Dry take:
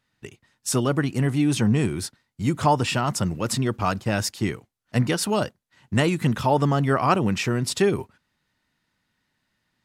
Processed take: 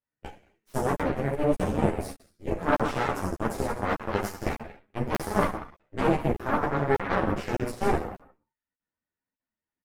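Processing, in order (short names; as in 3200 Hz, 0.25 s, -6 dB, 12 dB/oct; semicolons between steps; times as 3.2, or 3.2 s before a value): reverb removal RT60 0.71 s; reverse; compressor 5:1, threshold -29 dBFS, peak gain reduction 13.5 dB; reverse; outdoor echo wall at 32 m, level -15 dB; in parallel at -6.5 dB: soft clip -30 dBFS, distortion -12 dB; on the sum: graphic EQ 500/4000/8000 Hz +5/-10/-12 dB; non-linear reverb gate 0.34 s falling, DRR -2.5 dB; added harmonics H 4 -6 dB, 5 -44 dB, 7 -16 dB, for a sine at -9.5 dBFS; dynamic EQ 3100 Hz, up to -5 dB, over -42 dBFS, Q 1.1; crackling interface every 0.60 s, samples 2048, zero, from 0.95; ensemble effect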